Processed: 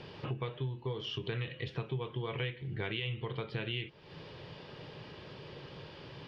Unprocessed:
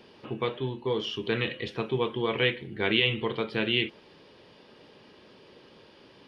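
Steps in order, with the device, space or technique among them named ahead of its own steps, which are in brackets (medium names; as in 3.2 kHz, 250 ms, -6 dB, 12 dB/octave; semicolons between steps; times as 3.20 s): jukebox (low-pass 5.2 kHz 12 dB/octave; resonant low shelf 180 Hz +6 dB, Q 3; compression 5:1, threshold -41 dBFS, peak gain reduction 20 dB); trim +5 dB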